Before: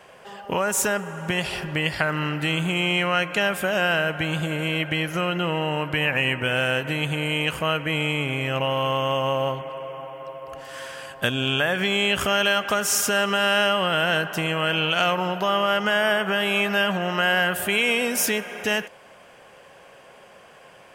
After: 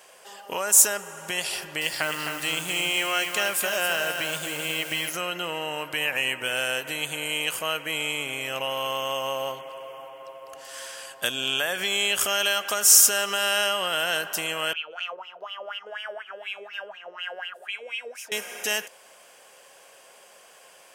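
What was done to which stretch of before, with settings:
1.55–5.16 s: bit-crushed delay 262 ms, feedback 35%, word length 7-bit, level -5.5 dB
10.08–11.26 s: treble shelf 9.3 kHz -6.5 dB
14.73–18.32 s: wah-wah 4.1 Hz 430–2900 Hz, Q 6.4
whole clip: tone controls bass -15 dB, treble +15 dB; trim -5 dB

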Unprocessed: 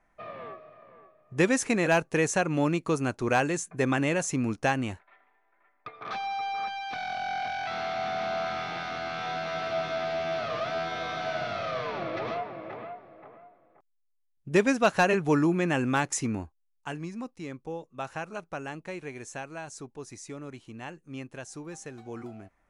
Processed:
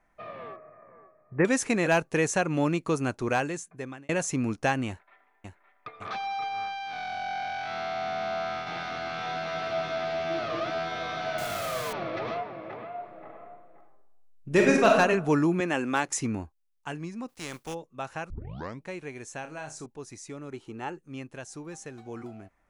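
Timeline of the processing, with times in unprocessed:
0.56–1.45 s: steep low-pass 2.2 kHz 48 dB/octave
3.16–4.09 s: fade out
4.88–5.94 s: echo throw 560 ms, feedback 60%, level -6 dB
6.48–8.67 s: spectral blur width 109 ms
10.30–10.72 s: peaking EQ 330 Hz +14.5 dB 0.21 oct
11.38–11.93 s: word length cut 6-bit, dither none
12.88–14.89 s: reverb throw, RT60 0.84 s, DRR -0.5 dB
15.60–16.08 s: high-pass 240 Hz
17.28–17.73 s: spectral contrast reduction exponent 0.5
18.30 s: tape start 0.55 s
19.41–19.86 s: flutter echo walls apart 5.6 m, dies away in 0.25 s
20.52–20.99 s: small resonant body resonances 400/840/1300 Hz, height 11 dB, ringing for 25 ms

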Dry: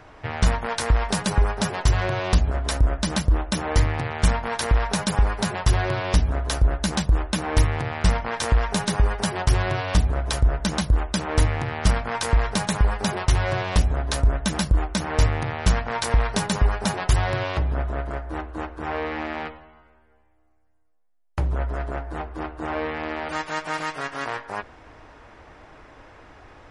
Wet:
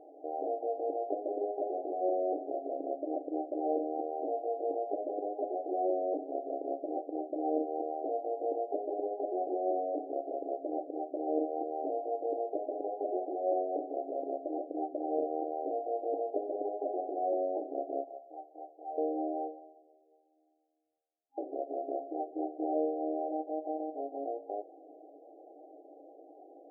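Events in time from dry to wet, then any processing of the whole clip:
18.04–18.98 s: high-pass 1 kHz
whole clip: FFT band-pass 270–810 Hz; trim -1.5 dB

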